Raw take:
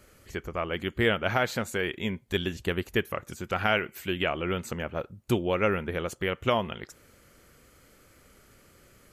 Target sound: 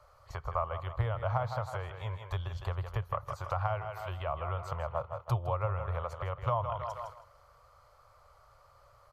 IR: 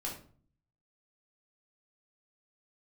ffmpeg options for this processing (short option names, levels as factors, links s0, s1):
-filter_complex "[0:a]equalizer=f=200:t=o:w=0.43:g=-15,asplit=2[s0][s1];[s1]aecho=0:1:159|318|477|636:0.282|0.113|0.0451|0.018[s2];[s0][s2]amix=inputs=2:normalize=0,acrossover=split=270[s3][s4];[s4]acompressor=threshold=0.01:ratio=6[s5];[s3][s5]amix=inputs=2:normalize=0,firequalizer=gain_entry='entry(130,0);entry(190,-21);entry(310,-24);entry(570,5);entry(1100,13);entry(1600,-7);entry(2800,-11);entry(4400,-3);entry(7300,-14)':delay=0.05:min_phase=1,agate=range=0.447:threshold=0.00398:ratio=16:detection=peak,volume=1.5"